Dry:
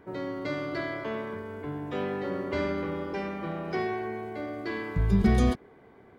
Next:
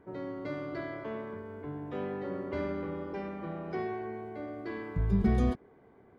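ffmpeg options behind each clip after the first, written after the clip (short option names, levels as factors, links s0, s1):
-af "highshelf=f=2200:g=-10.5,volume=0.631"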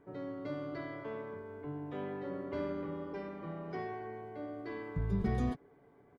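-af "aecho=1:1:7:0.42,volume=0.596"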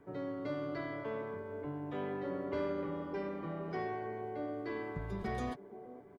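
-filter_complex "[0:a]acrossover=split=390|640[s0][s1][s2];[s0]acompressor=threshold=0.00794:ratio=6[s3];[s1]aecho=1:1:472|944|1416|1888|2360|2832:0.562|0.276|0.135|0.0662|0.0324|0.0159[s4];[s3][s4][s2]amix=inputs=3:normalize=0,volume=1.33"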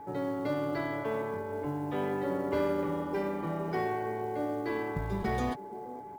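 -af "aeval=exprs='val(0)+0.00316*sin(2*PI*850*n/s)':c=same,acrusher=bits=8:mode=log:mix=0:aa=0.000001,volume=2.11"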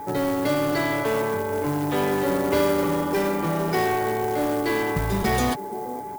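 -filter_complex "[0:a]crystalizer=i=3:c=0,asplit=2[s0][s1];[s1]aeval=exprs='(mod(25.1*val(0)+1,2)-1)/25.1':c=same,volume=0.266[s2];[s0][s2]amix=inputs=2:normalize=0,volume=2.51"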